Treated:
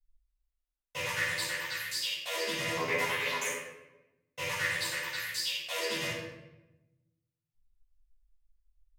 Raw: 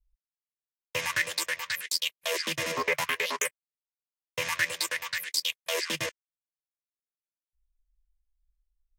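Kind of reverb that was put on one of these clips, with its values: simulated room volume 420 m³, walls mixed, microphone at 7.1 m; trim -17 dB

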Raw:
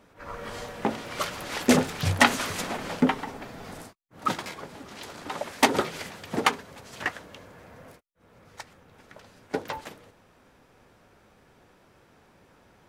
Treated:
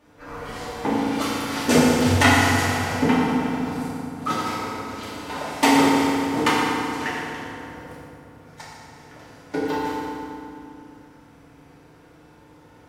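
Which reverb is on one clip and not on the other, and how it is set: FDN reverb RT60 2.7 s, low-frequency decay 1.4×, high-frequency decay 0.7×, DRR -8.5 dB; trim -3.5 dB

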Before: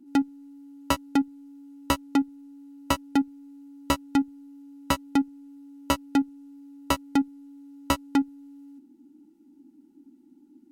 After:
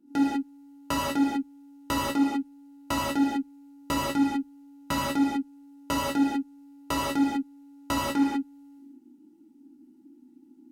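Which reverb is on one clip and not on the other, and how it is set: gated-style reverb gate 220 ms flat, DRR -7 dB; trim -7.5 dB

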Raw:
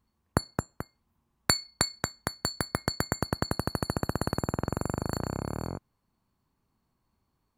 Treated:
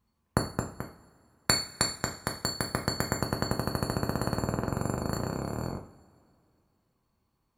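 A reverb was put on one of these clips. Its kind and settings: two-slope reverb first 0.42 s, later 2.5 s, from -21 dB, DRR 2 dB; trim -1.5 dB

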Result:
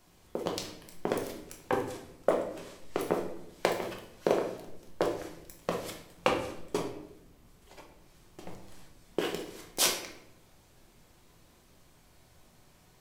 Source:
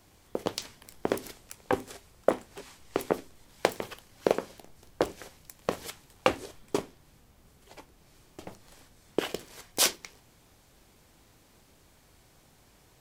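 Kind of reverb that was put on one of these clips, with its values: simulated room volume 210 m³, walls mixed, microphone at 0.98 m; trim -4 dB

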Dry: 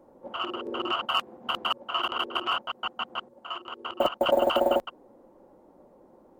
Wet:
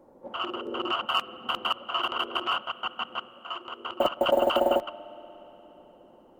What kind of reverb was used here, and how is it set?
spring tank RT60 4 s, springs 59 ms, chirp 25 ms, DRR 17 dB

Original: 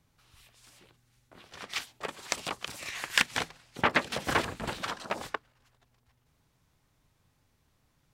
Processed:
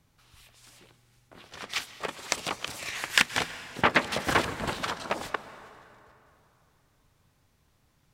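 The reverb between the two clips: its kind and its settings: plate-style reverb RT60 3 s, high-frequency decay 0.7×, pre-delay 115 ms, DRR 13.5 dB; trim +3 dB

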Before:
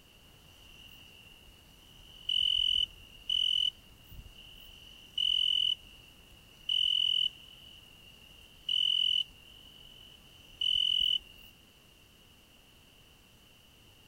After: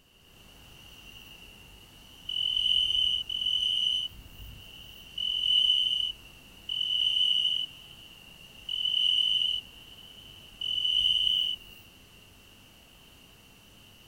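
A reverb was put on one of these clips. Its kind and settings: gated-style reverb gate 390 ms rising, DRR -7.5 dB; trim -3 dB

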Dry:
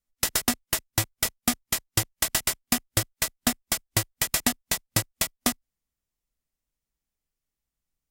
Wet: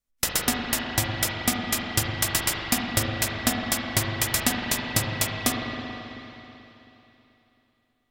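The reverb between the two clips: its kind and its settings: spring tank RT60 3.3 s, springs 39/54 ms, chirp 30 ms, DRR -1.5 dB

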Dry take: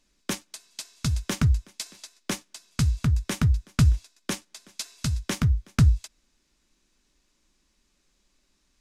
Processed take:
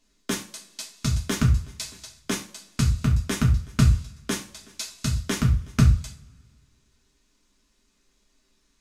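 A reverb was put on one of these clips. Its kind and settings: two-slope reverb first 0.35 s, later 1.7 s, from -25 dB, DRR -1.5 dB; trim -1.5 dB

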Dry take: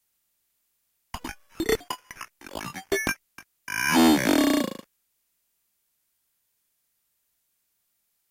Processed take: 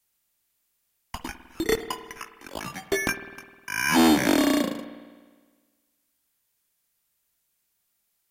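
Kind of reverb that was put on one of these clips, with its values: spring tank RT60 1.5 s, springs 51 ms, chirp 45 ms, DRR 11 dB

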